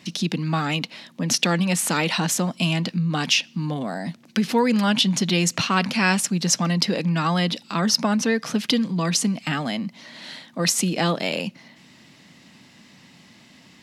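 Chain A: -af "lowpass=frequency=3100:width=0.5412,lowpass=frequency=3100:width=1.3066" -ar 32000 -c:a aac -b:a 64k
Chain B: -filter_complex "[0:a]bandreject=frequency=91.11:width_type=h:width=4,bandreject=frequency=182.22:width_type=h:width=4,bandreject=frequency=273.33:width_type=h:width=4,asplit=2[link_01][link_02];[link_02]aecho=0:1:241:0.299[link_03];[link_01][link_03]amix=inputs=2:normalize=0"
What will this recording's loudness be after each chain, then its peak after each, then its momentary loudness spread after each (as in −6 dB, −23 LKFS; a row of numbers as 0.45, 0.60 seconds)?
−24.0, −22.0 LKFS; −5.5, −3.0 dBFS; 9, 10 LU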